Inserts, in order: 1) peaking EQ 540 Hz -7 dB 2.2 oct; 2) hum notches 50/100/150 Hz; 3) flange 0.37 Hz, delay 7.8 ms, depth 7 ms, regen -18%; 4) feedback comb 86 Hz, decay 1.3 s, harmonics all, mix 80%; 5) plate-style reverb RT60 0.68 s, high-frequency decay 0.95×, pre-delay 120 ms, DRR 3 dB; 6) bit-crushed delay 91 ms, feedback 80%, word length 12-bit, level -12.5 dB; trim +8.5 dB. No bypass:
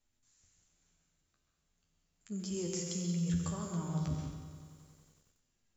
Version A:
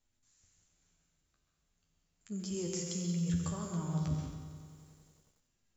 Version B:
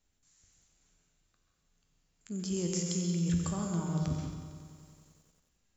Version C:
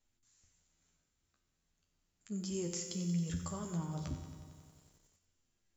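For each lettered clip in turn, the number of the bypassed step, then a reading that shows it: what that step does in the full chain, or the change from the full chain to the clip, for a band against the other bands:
2, momentary loudness spread change -1 LU; 3, momentary loudness spread change -3 LU; 5, crest factor change +2.0 dB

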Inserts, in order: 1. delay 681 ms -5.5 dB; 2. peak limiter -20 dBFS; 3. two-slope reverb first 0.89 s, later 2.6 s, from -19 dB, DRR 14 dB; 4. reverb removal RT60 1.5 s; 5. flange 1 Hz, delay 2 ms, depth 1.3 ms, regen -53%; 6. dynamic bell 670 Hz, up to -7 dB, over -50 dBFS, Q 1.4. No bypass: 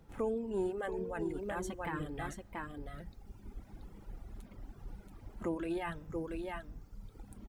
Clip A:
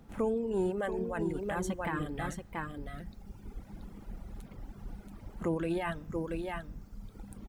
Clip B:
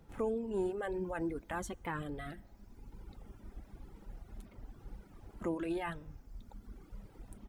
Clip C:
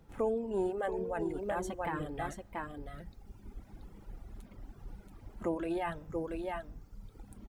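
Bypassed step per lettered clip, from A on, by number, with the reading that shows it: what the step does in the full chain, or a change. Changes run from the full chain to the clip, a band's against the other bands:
5, loudness change +4.0 LU; 1, momentary loudness spread change +2 LU; 6, momentary loudness spread change +2 LU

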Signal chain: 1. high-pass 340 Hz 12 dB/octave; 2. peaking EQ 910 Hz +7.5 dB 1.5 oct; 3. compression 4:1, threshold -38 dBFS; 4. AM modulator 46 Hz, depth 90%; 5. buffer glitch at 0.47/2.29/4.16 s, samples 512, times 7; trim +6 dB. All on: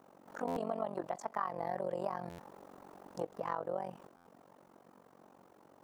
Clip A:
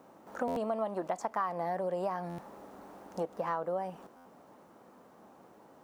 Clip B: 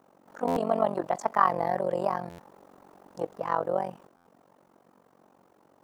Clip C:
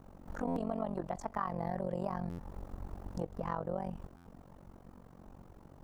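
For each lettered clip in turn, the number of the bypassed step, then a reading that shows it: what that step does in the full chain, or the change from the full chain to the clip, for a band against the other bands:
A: 4, crest factor change -2.0 dB; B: 3, mean gain reduction 6.5 dB; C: 1, 125 Hz band +10.5 dB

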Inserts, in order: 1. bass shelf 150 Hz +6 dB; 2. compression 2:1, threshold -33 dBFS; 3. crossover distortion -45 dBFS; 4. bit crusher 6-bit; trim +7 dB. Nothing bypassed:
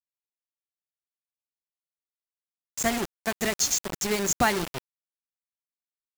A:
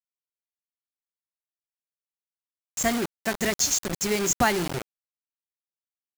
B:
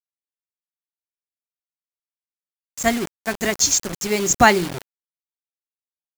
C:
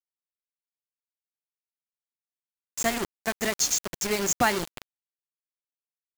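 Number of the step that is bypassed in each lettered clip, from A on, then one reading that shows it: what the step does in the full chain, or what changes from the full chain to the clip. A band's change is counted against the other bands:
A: 3, distortion -15 dB; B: 2, mean gain reduction 4.5 dB; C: 1, 125 Hz band -2.5 dB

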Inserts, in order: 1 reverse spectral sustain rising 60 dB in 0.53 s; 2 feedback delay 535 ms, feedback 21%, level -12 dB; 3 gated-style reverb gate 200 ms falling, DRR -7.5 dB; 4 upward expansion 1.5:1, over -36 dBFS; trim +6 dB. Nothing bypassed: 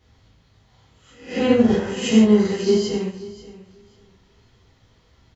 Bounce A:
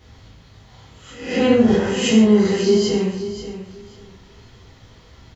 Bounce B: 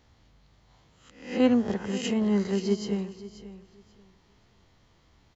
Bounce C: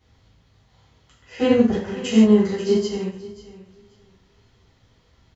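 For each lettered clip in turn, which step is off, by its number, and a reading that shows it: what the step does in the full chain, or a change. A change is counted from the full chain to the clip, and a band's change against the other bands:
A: 4, momentary loudness spread change +2 LU; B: 3, momentary loudness spread change +3 LU; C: 1, 4 kHz band -2.0 dB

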